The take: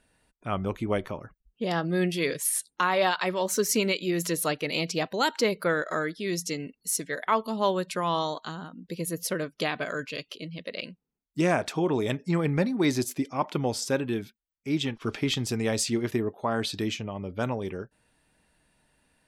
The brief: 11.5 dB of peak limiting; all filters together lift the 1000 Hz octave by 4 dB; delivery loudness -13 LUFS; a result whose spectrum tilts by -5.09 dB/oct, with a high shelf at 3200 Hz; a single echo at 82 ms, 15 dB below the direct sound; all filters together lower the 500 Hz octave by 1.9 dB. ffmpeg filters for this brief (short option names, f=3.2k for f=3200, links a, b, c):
-af "equalizer=f=500:t=o:g=-4,equalizer=f=1k:t=o:g=7,highshelf=f=3.2k:g=-9,alimiter=limit=-20dB:level=0:latency=1,aecho=1:1:82:0.178,volume=18.5dB"